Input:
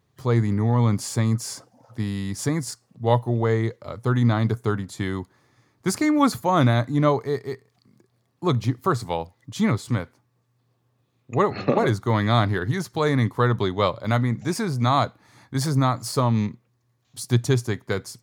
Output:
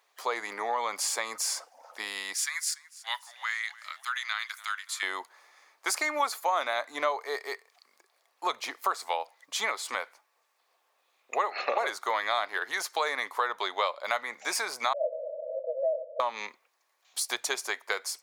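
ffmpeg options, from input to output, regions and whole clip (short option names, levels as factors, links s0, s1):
-filter_complex "[0:a]asettb=1/sr,asplit=3[s0][s1][s2];[s0]atrim=end=2.344[s3];[s1]atrim=start=2.34:end=5.03,asetpts=PTS-STARTPTS,afade=t=in:d=0.004:c=qsin,afade=t=out:st=2.686:d=0.004:c=qsin,highpass=f=1500:w=0.5412,highpass=f=1500:w=1.3066,aeval=exprs='val(0)+0.00141*(sin(2*PI*50*n/s)+sin(2*PI*2*50*n/s)/2+sin(2*PI*3*50*n/s)/3+sin(2*PI*4*50*n/s)/4+sin(2*PI*5*50*n/s)/5)':c=same,asplit=5[s4][s5][s6][s7][s8];[s5]adelay=288,afreqshift=-61,volume=0.0794[s9];[s6]adelay=576,afreqshift=-122,volume=0.0468[s10];[s7]adelay=864,afreqshift=-183,volume=0.0275[s11];[s8]adelay=1152,afreqshift=-244,volume=0.0164[s12];[s4][s9][s10][s11][s12]amix=inputs=5:normalize=0,atrim=end_sample=118629[s13];[s2]atrim=start=5.026[s14];[s3][s13]acrossfade=d=0.004:c1=hsin:c2=qsin[s15];[s15][s14]acrossfade=d=0.004:c1=qsin:c2=hsin,asettb=1/sr,asplit=3[s16][s17][s18];[s16]atrim=end=14.934[s19];[s17]atrim=start=14.93:end=16.2,asetpts=PTS-STARTPTS,afade=t=in:d=0.004:c=qsin,afade=t=out:st=1.266:d=0.004:c=qsin,aeval=exprs='val(0)+0.5*0.075*sgn(val(0))':c=same,acontrast=82,asuperpass=centerf=560:order=20:qfactor=3.1[s20];[s18]atrim=start=16.196[s21];[s19][s20]acrossfade=d=0.004:c1=hsin:c2=qsin[s22];[s22][s21]acrossfade=d=0.004:c1=qsin:c2=hsin,highpass=f=610:w=0.5412,highpass=f=610:w=1.3066,equalizer=f=2300:w=3.9:g=4,acompressor=threshold=0.0224:ratio=3,volume=1.88"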